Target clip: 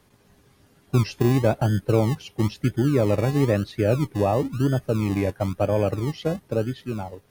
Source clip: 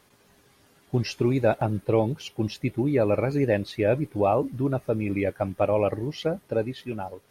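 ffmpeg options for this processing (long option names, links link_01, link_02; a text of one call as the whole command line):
ffmpeg -i in.wav -filter_complex "[0:a]lowshelf=frequency=300:gain=10.5,acrossover=split=180[link_01][link_02];[link_01]acrusher=samples=38:mix=1:aa=0.000001:lfo=1:lforange=22.8:lforate=1[link_03];[link_03][link_02]amix=inputs=2:normalize=0,volume=-2.5dB" out.wav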